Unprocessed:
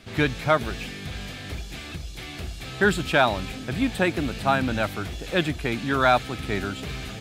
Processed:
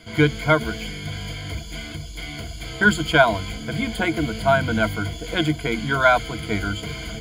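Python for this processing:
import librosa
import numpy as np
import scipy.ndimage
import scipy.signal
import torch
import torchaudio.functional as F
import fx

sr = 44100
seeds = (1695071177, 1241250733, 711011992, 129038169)

y = fx.ripple_eq(x, sr, per_octave=1.8, db=17)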